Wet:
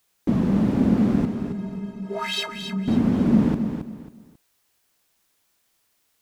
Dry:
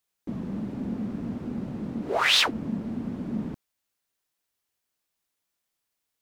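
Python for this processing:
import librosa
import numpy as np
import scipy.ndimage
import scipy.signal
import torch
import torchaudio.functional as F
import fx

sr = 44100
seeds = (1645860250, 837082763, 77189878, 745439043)

y = fx.rider(x, sr, range_db=4, speed_s=0.5)
y = fx.stiff_resonator(y, sr, f0_hz=190.0, decay_s=0.28, stiffness=0.03, at=(1.25, 2.88))
y = fx.echo_feedback(y, sr, ms=271, feedback_pct=28, wet_db=-8.0)
y = F.gain(torch.from_numpy(y), 8.5).numpy()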